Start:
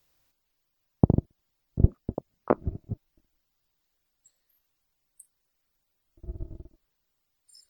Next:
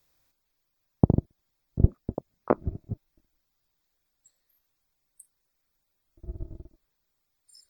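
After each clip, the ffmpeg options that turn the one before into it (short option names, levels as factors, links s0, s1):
-af "bandreject=f=2900:w=8.3"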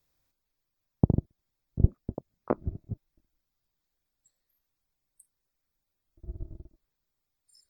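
-af "lowshelf=f=330:g=5,volume=0.473"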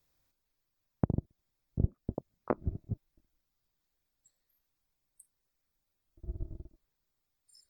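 -af "acompressor=threshold=0.0562:ratio=4"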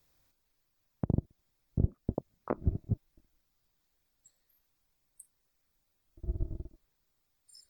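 -af "alimiter=limit=0.0944:level=0:latency=1:release=50,volume=1.78"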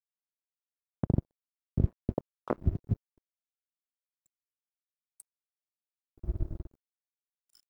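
-af "aeval=exprs='sgn(val(0))*max(abs(val(0))-0.00224,0)':c=same,volume=1.26"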